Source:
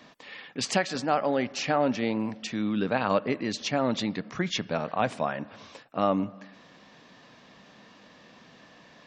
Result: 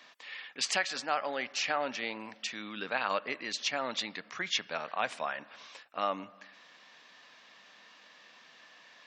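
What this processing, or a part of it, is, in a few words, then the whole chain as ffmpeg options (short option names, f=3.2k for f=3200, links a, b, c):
filter by subtraction: -filter_complex "[0:a]asplit=2[a][b];[b]lowpass=2k,volume=-1[c];[a][c]amix=inputs=2:normalize=0,volume=-1.5dB"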